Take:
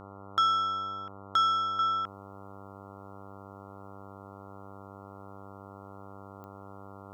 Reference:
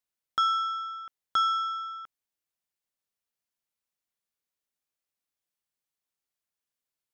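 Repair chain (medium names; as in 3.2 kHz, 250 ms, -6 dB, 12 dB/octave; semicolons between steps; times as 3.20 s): de-click; de-hum 98.6 Hz, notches 14; trim 0 dB, from 1.79 s -9.5 dB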